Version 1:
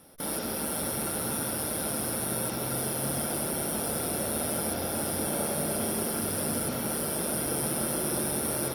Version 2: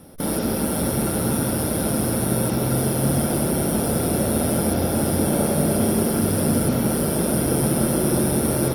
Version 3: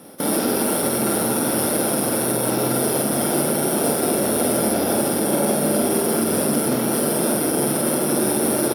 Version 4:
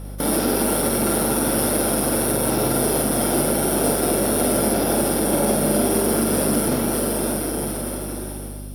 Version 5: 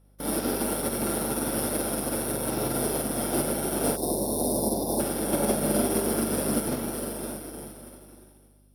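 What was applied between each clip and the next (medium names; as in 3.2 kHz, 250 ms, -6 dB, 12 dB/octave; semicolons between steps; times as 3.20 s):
bass shelf 490 Hz +11.5 dB; trim +4 dB
peak limiter -14.5 dBFS, peak gain reduction 8 dB; high-pass 240 Hz 12 dB/octave; doubling 48 ms -4 dB; trim +4.5 dB
fade out at the end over 2.18 s; hum 50 Hz, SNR 12 dB; two-band feedback delay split 2.4 kHz, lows 272 ms, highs 723 ms, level -15.5 dB
time-frequency box 3.97–5.00 s, 1.1–3.5 kHz -23 dB; upward expansion 2.5:1, over -32 dBFS; trim -3.5 dB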